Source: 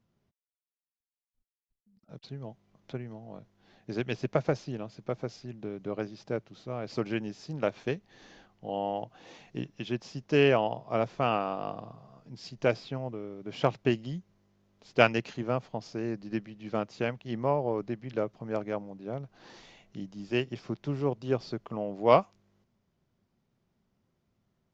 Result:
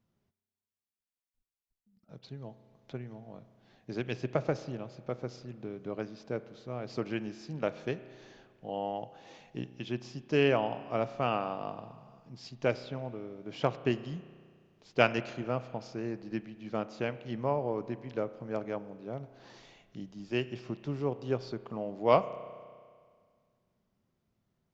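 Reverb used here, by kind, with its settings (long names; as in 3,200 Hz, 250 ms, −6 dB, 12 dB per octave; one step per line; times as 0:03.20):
spring reverb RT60 1.9 s, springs 32 ms, chirp 40 ms, DRR 14 dB
level −3 dB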